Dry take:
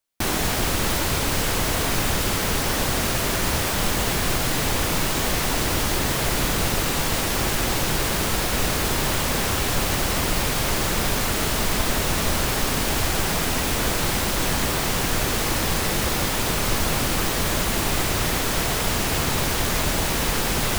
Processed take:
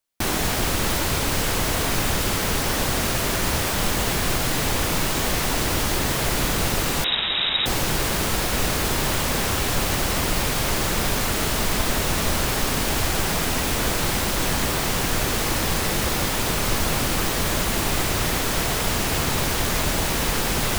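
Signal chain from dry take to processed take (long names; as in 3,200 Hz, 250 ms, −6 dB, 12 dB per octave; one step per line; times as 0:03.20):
0:07.04–0:07.66: voice inversion scrambler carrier 3,800 Hz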